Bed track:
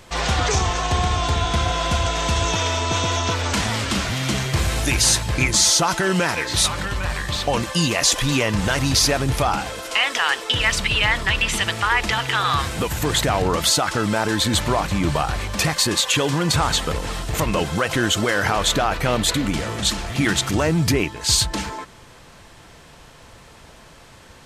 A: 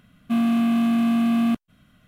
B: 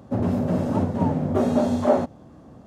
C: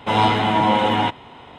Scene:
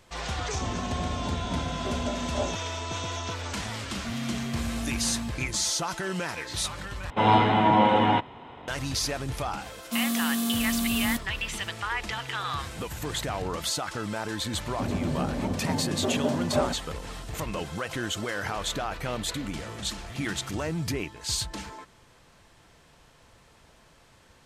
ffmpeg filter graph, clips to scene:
-filter_complex "[2:a]asplit=2[a][b];[1:a]asplit=2[c][d];[0:a]volume=-11.5dB[e];[3:a]lowpass=f=2.2k:p=1[f];[d]aexciter=amount=8.4:drive=8.2:freq=3.8k[g];[e]asplit=2[h][i];[h]atrim=end=7.104[j];[f]atrim=end=1.58,asetpts=PTS-STARTPTS,volume=-2dB[k];[i]atrim=start=8.676[l];[a]atrim=end=2.66,asetpts=PTS-STARTPTS,volume=-12dB,afade=t=in:d=0.004:c=hsin,afade=t=out:st=2.656:d=0.004:c=hsin,adelay=500[m];[c]atrim=end=2.07,asetpts=PTS-STARTPTS,volume=-14.5dB,afade=t=in:d=0.004:c=hsin,afade=t=out:st=2.066:d=0.004:c=hsin,adelay=3750[n];[g]atrim=end=2.07,asetpts=PTS-STARTPTS,volume=-8.5dB,afade=t=in:d=0.004:c=hsin,afade=t=out:st=2.066:d=0.004:c=hsin,adelay=424242S[o];[b]atrim=end=2.66,asetpts=PTS-STARTPTS,volume=-7dB,afade=t=in:d=0.004:c=hsin,afade=t=out:st=2.656:d=0.004:c=hsin,adelay=14680[p];[j][k]acrossfade=d=0.004:c1=hsin:c2=hsin[q];[q][l]acrossfade=d=0.004:c1=hsin:c2=hsin[r];[r][m][n][o][p]amix=inputs=5:normalize=0"

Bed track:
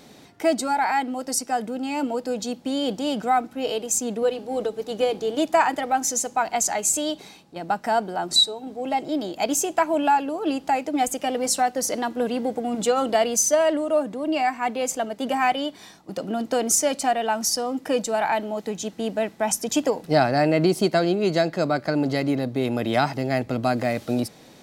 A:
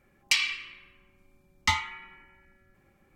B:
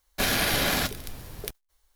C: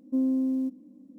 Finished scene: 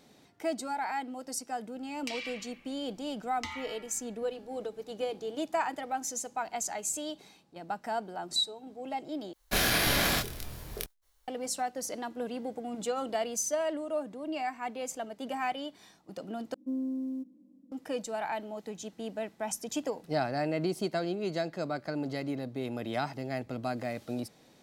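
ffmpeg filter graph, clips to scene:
-filter_complex "[0:a]volume=-11.5dB[a];[1:a]acompressor=threshold=-30dB:ratio=6:attack=3.2:release=140:knee=1:detection=peak[b];[2:a]asplit=2[c][d];[d]adelay=25,volume=-2.5dB[e];[c][e]amix=inputs=2:normalize=0[f];[a]asplit=3[g][h][i];[g]atrim=end=9.334[j];[f]atrim=end=1.95,asetpts=PTS-STARTPTS,volume=-3.5dB[k];[h]atrim=start=11.276:end=16.544[l];[3:a]atrim=end=1.18,asetpts=PTS-STARTPTS,volume=-8dB[m];[i]atrim=start=17.716[n];[b]atrim=end=3.15,asetpts=PTS-STARTPTS,volume=-5dB,afade=t=in:d=0.004:c=hsin,afade=t=out:st=3.146:d=0.004:c=hsin,adelay=1760[o];[j][k]acrossfade=d=0.004:c1=hsin:c2=hsin[p];[p][l]acrossfade=d=0.004:c1=hsin:c2=hsin[q];[q][m]acrossfade=d=0.004:c1=hsin:c2=hsin[r];[r][n]acrossfade=d=0.004:c1=hsin:c2=hsin[s];[s][o]amix=inputs=2:normalize=0"

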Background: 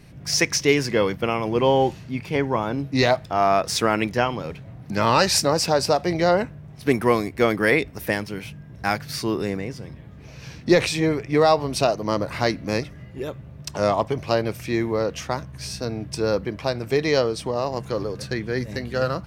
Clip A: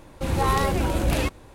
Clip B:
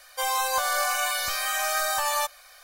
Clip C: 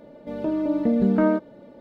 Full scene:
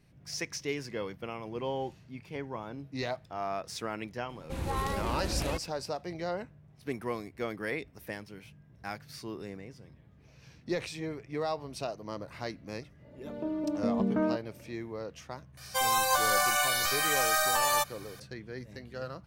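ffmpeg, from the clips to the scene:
-filter_complex "[0:a]volume=-16dB[a];[1:a]atrim=end=1.54,asetpts=PTS-STARTPTS,volume=-10.5dB,afade=t=in:d=0.004:c=hsin,afade=t=out:st=1.536:d=0.004:c=hsin,adelay=189189S[b];[3:a]atrim=end=1.8,asetpts=PTS-STARTPTS,volume=-9dB,afade=t=in:d=0.1,afade=t=out:st=1.7:d=0.1,adelay=12980[c];[2:a]atrim=end=2.63,asetpts=PTS-STARTPTS,volume=-1dB,afade=t=in:d=0.004:c=hsin,afade=t=out:st=2.626:d=0.004:c=hsin,adelay=15570[d];[a][b][c][d]amix=inputs=4:normalize=0"

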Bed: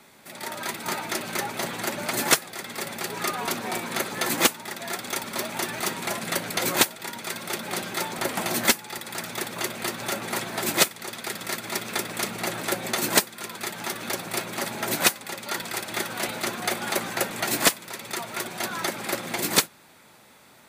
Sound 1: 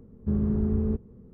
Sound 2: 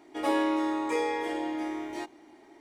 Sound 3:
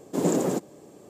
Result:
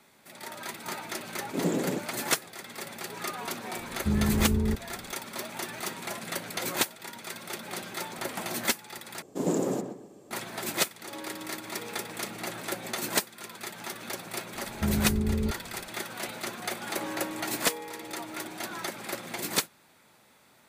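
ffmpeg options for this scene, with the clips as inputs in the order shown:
-filter_complex "[3:a]asplit=2[a][b];[1:a]asplit=2[c][d];[2:a]asplit=2[e][f];[0:a]volume=-7dB[g];[a]lowshelf=f=350:g=7[h];[b]asplit=2[i][j];[j]adelay=125,lowpass=f=2k:p=1,volume=-7dB,asplit=2[k][l];[l]adelay=125,lowpass=f=2k:p=1,volume=0.31,asplit=2[m][n];[n]adelay=125,lowpass=f=2k:p=1,volume=0.31,asplit=2[o][p];[p]adelay=125,lowpass=f=2k:p=1,volume=0.31[q];[i][k][m][o][q]amix=inputs=5:normalize=0[r];[f]acrossover=split=4100[s][t];[s]adelay=80[u];[u][t]amix=inputs=2:normalize=0[v];[g]asplit=2[w][x];[w]atrim=end=9.224[y];[r]atrim=end=1.09,asetpts=PTS-STARTPTS,volume=-4.5dB[z];[x]atrim=start=10.306[aa];[h]atrim=end=1.09,asetpts=PTS-STARTPTS,volume=-8.5dB,afade=t=in:d=0.004:c=hsin,afade=t=out:st=1.086:d=0.004:c=hsin,adelay=1400[ab];[c]atrim=end=1.33,asetpts=PTS-STARTPTS,volume=-0.5dB,afade=t=in:d=0.004:c=hsin,afade=t=out:st=1.326:d=0.004:c=hsin,adelay=3790[ac];[e]atrim=end=2.6,asetpts=PTS-STARTPTS,volume=-16dB,afade=t=in:d=0.004:c=hsin,afade=t=out:st=2.596:d=0.004:c=hsin,adelay=10870[ad];[d]atrim=end=1.33,asetpts=PTS-STARTPTS,volume=-2dB,afade=t=in:d=0.004:c=hsin,afade=t=out:st=1.326:d=0.004:c=hsin,adelay=14550[ae];[v]atrim=end=2.6,asetpts=PTS-STARTPTS,volume=-11dB,afade=t=in:d=0.004:c=hsin,afade=t=out:st=2.596:d=0.004:c=hsin,adelay=16660[af];[y][z]acrossfade=d=0.004:c1=hsin:c2=hsin[ag];[ag][aa]acrossfade=d=0.004:c1=hsin:c2=hsin[ah];[ah][ab][ac][ad][ae][af]amix=inputs=6:normalize=0"

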